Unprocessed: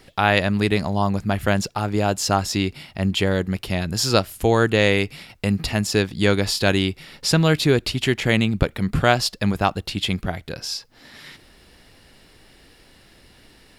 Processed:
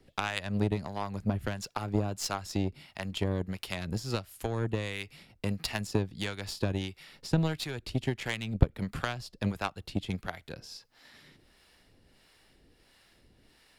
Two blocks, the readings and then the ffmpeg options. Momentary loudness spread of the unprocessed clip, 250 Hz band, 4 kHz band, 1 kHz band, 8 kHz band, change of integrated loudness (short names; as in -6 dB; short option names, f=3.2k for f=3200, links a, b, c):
8 LU, -12.0 dB, -14.5 dB, -14.0 dB, -14.0 dB, -12.5 dB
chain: -filter_complex "[0:a]acrossover=split=140[a][b];[b]acompressor=threshold=-23dB:ratio=8[c];[a][c]amix=inputs=2:normalize=0,acrossover=split=580[d][e];[d]aeval=exprs='val(0)*(1-0.7/2+0.7/2*cos(2*PI*1.5*n/s))':c=same[f];[e]aeval=exprs='val(0)*(1-0.7/2-0.7/2*cos(2*PI*1.5*n/s))':c=same[g];[f][g]amix=inputs=2:normalize=0,aeval=exprs='0.398*(cos(1*acos(clip(val(0)/0.398,-1,1)))-cos(1*PI/2))+0.0355*(cos(7*acos(clip(val(0)/0.398,-1,1)))-cos(7*PI/2))+0.00794*(cos(8*acos(clip(val(0)/0.398,-1,1)))-cos(8*PI/2))':c=same"